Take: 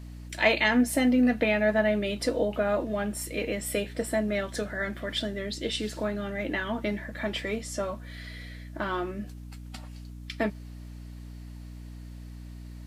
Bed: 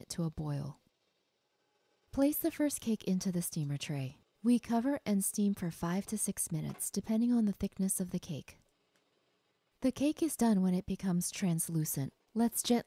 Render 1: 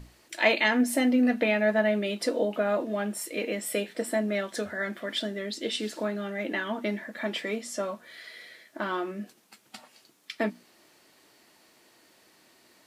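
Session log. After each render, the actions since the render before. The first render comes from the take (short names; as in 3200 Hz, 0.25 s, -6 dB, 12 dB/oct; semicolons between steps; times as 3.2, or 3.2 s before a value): notches 60/120/180/240/300 Hz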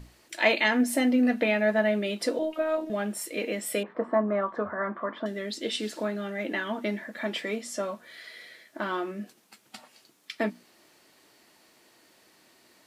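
2.39–2.9 robotiser 314 Hz; 3.83–5.26 synth low-pass 1100 Hz, resonance Q 7.6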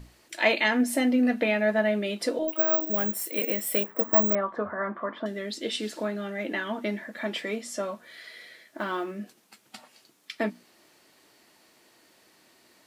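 2.48–4.35 careless resampling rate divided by 2×, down none, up zero stuff; 8.78–9.18 block floating point 7-bit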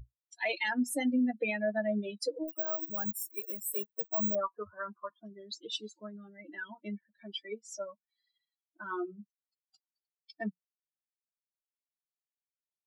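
per-bin expansion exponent 3; limiter -22.5 dBFS, peak gain reduction 11.5 dB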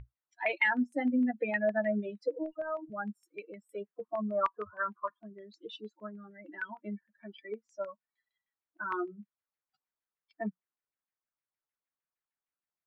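LFO low-pass saw down 6.5 Hz 970–2300 Hz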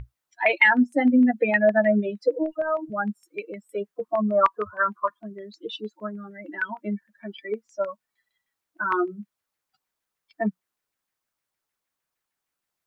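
gain +10.5 dB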